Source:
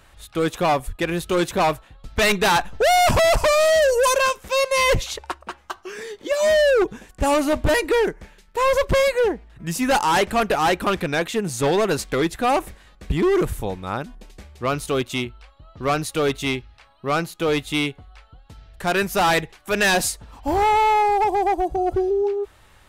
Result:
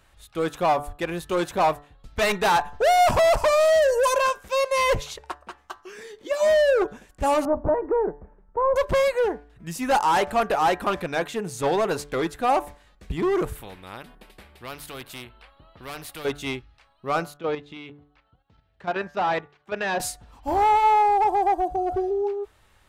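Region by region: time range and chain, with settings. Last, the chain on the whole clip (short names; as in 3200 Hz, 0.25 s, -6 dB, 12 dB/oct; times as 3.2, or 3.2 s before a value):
7.45–8.76 LPF 1100 Hz 24 dB/oct + three-band squash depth 40%
13.55–16.25 bell 6400 Hz -15 dB 0.87 oct + spectral compressor 2:1
17.37–20 HPF 88 Hz + level quantiser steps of 10 dB + air absorption 190 m
whole clip: de-hum 145.5 Hz, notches 13; dynamic EQ 810 Hz, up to +7 dB, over -31 dBFS, Q 0.8; gain -7 dB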